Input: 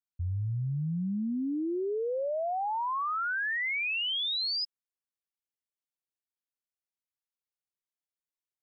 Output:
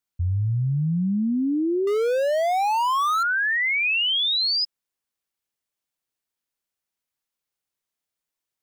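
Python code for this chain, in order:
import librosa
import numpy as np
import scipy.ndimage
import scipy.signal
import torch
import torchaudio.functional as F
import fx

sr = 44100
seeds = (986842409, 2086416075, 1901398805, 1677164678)

y = fx.power_curve(x, sr, exponent=0.5, at=(1.87, 3.23))
y = fx.peak_eq(y, sr, hz=1500.0, db=14.0, octaves=0.28, at=(3.83, 4.51), fade=0.02)
y = y * 10.0 ** (8.5 / 20.0)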